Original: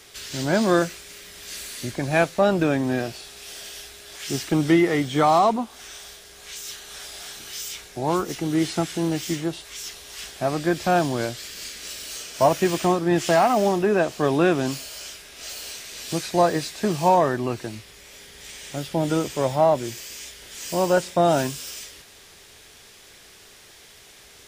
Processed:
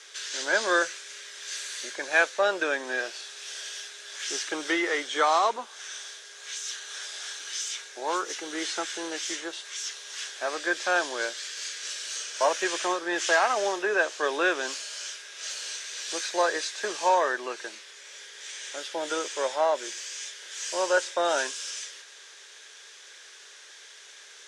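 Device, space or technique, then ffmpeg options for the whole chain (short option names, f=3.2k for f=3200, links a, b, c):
phone speaker on a table: -af "highpass=f=450:w=0.5412,highpass=f=450:w=1.3066,equalizer=f=710:t=q:w=4:g=-8,equalizer=f=1.6k:t=q:w=4:g=8,equalizer=f=3.5k:t=q:w=4:g=4,equalizer=f=6.2k:t=q:w=4:g=6,lowpass=f=8.9k:w=0.5412,lowpass=f=8.9k:w=1.3066,volume=-2dB"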